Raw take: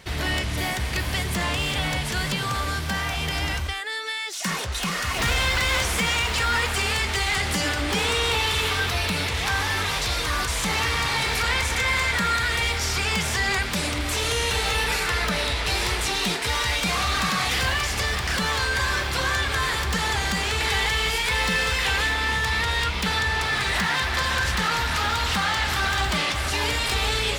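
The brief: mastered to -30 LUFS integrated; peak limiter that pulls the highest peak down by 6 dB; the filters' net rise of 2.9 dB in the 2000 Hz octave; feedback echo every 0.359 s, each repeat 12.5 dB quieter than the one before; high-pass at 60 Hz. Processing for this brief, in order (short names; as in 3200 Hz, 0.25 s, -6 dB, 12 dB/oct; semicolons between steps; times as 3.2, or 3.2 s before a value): HPF 60 Hz; bell 2000 Hz +3.5 dB; limiter -16.5 dBFS; feedback echo 0.359 s, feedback 24%, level -12.5 dB; gain -6.5 dB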